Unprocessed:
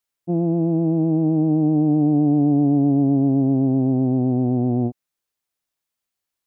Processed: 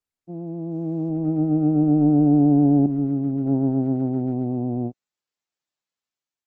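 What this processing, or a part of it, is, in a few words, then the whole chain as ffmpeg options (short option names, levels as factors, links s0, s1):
video call: -filter_complex "[0:a]asettb=1/sr,asplit=3[s0][s1][s2];[s0]atrim=end=2.864[s3];[s1]atrim=start=2.86:end=3.46,asetpts=PTS-STARTPTS,afade=t=in:d=0.004:c=qsin,afade=t=out:st=0.596:d=0.004:c=qsin,adynamicequalizer=threshold=0.0158:dfrequency=620:dqfactor=1.1:tfrequency=620:tqfactor=1.1:attack=5:release=100:ratio=0.375:range=3:mode=cutabove:tftype=bell[s4];[s2]atrim=start=3.456[s5];[s3][s4]acrossfade=d=0.004:c1=hsin:c2=qsin[s6];[s6][s5]acrossfade=d=0.004:c1=qsin:c2=hsin,highpass=100,dynaudnorm=f=320:g=5:m=3.35,agate=range=0.447:threshold=0.355:ratio=16:detection=peak,volume=0.501" -ar 48000 -c:a libopus -b:a 16k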